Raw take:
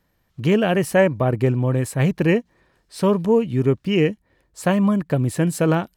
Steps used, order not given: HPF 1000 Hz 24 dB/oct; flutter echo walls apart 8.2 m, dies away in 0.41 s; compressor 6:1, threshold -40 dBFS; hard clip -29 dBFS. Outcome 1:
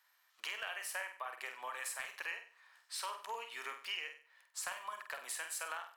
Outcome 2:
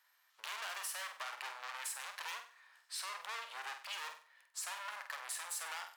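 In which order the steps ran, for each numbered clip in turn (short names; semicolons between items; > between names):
HPF > compressor > hard clip > flutter echo; hard clip > HPF > compressor > flutter echo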